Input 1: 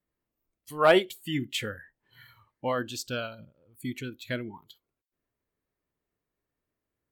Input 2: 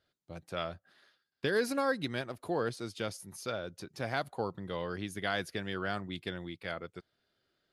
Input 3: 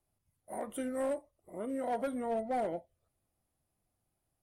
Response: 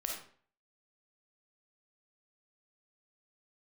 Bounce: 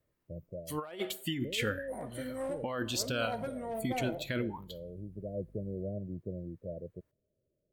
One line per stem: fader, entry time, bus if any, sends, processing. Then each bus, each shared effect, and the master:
-1.5 dB, 0.00 s, send -21.5 dB, none
+1.5 dB, 0.00 s, no send, Chebyshev low-pass 630 Hz, order 8; peaking EQ 310 Hz -8 dB 1.3 oct; auto duck -10 dB, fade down 0.20 s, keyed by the first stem
-10.5 dB, 1.40 s, send -8 dB, hum 50 Hz, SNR 16 dB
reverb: on, RT60 0.50 s, pre-delay 10 ms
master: compressor with a negative ratio -34 dBFS, ratio -1

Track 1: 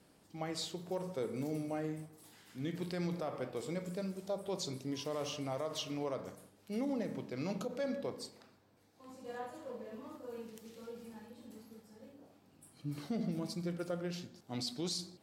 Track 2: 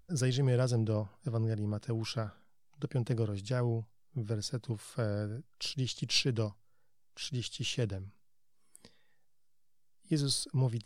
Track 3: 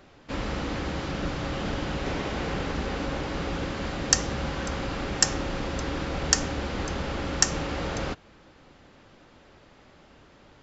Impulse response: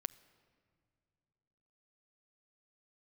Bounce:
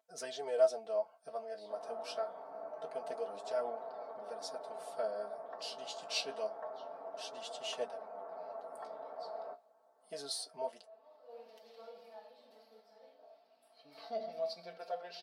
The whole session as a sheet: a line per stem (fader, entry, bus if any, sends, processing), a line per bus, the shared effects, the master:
-4.5 dB, 1.00 s, no send, resonant high shelf 5.8 kHz -8 dB, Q 3; auto duck -20 dB, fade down 0.65 s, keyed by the second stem
-6.0 dB, 0.00 s, no send, none
-16.5 dB, 1.40 s, no send, low-pass 1.2 kHz 24 dB/octave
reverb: none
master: comb 4.5 ms, depth 95%; flange 0.26 Hz, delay 7.5 ms, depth 9.8 ms, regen +45%; resonant high-pass 650 Hz, resonance Q 6.2

